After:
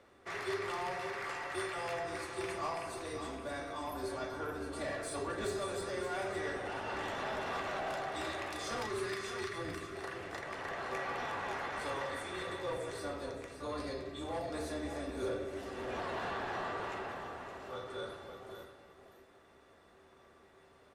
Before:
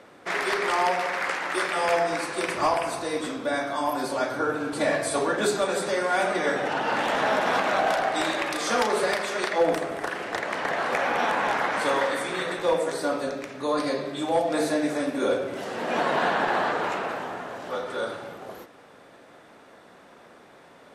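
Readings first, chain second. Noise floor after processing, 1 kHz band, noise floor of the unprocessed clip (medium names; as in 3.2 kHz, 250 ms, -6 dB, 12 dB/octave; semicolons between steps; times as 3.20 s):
-62 dBFS, -14.0 dB, -51 dBFS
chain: octave divider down 2 oct, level -3 dB; time-frequency box 8.86–9.96 s, 410–1000 Hz -11 dB; saturation -19.5 dBFS, distortion -16 dB; feedback comb 390 Hz, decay 0.25 s, harmonics odd, mix 80%; on a send: delay 567 ms -9 dB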